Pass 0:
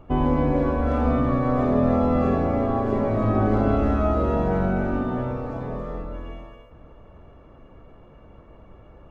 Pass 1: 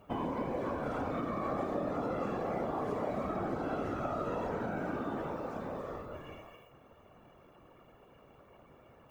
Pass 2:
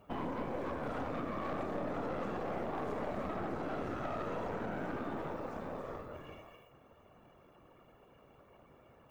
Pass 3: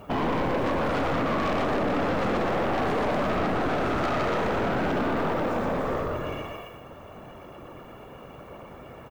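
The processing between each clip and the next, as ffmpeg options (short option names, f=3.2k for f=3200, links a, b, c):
-af "afftfilt=real='hypot(re,im)*cos(2*PI*random(0))':imag='hypot(re,im)*sin(2*PI*random(1))':win_size=512:overlap=0.75,acompressor=threshold=-28dB:ratio=5,aemphasis=mode=production:type=bsi"
-af "aeval=exprs='(tanh(44.7*val(0)+0.65)-tanh(0.65))/44.7':c=same,volume=1dB"
-filter_complex "[0:a]aecho=1:1:120:0.668,asplit=2[a][b];[b]aeval=exprs='0.0631*sin(PI/2*3.98*val(0)/0.0631)':c=same,volume=-10dB[c];[a][c]amix=inputs=2:normalize=0,volume=6.5dB"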